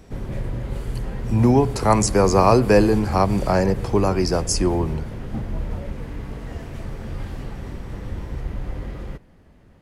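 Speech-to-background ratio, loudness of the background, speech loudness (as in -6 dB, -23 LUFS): 12.0 dB, -31.0 LUFS, -19.0 LUFS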